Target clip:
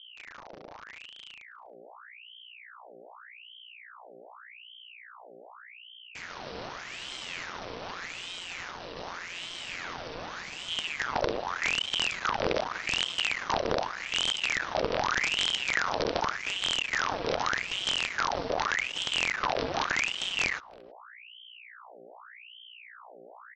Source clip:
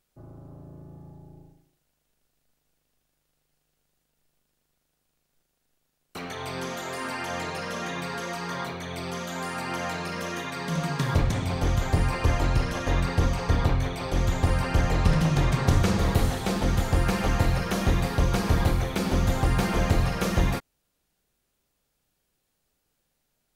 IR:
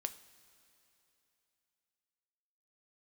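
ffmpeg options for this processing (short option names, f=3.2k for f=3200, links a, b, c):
-filter_complex "[0:a]equalizer=f=1.4k:w=3.3:g=-14.5,bandreject=f=840:w=12,alimiter=limit=-17dB:level=0:latency=1:release=15,aresample=11025,acrusher=bits=4:dc=4:mix=0:aa=0.000001,aresample=44100,asplit=2[a][b];[b]adelay=320,highpass=300,lowpass=3.4k,asoftclip=type=hard:threshold=-16.5dB,volume=-24dB[c];[a][c]amix=inputs=2:normalize=0,aeval=exprs='val(0)+0.00501*(sin(2*PI*60*n/s)+sin(2*PI*2*60*n/s)/2+sin(2*PI*3*60*n/s)/3+sin(2*PI*4*60*n/s)/4+sin(2*PI*5*60*n/s)/5)':c=same,aeval=exprs='val(0)*sin(2*PI*1800*n/s+1800*0.75/0.84*sin(2*PI*0.84*n/s))':c=same"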